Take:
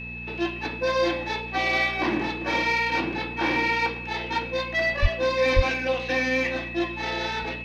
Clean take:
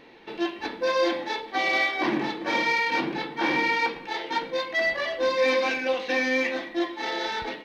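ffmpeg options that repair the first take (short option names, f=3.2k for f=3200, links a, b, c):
-filter_complex "[0:a]bandreject=f=59.5:t=h:w=4,bandreject=f=119:t=h:w=4,bandreject=f=178.5:t=h:w=4,bandreject=f=238:t=h:w=4,bandreject=f=2.6k:w=30,asplit=3[a][b][c];[a]afade=t=out:st=5.01:d=0.02[d];[b]highpass=f=140:w=0.5412,highpass=f=140:w=1.3066,afade=t=in:st=5.01:d=0.02,afade=t=out:st=5.13:d=0.02[e];[c]afade=t=in:st=5.13:d=0.02[f];[d][e][f]amix=inputs=3:normalize=0,asplit=3[g][h][i];[g]afade=t=out:st=5.55:d=0.02[j];[h]highpass=f=140:w=0.5412,highpass=f=140:w=1.3066,afade=t=in:st=5.55:d=0.02,afade=t=out:st=5.67:d=0.02[k];[i]afade=t=in:st=5.67:d=0.02[l];[j][k][l]amix=inputs=3:normalize=0"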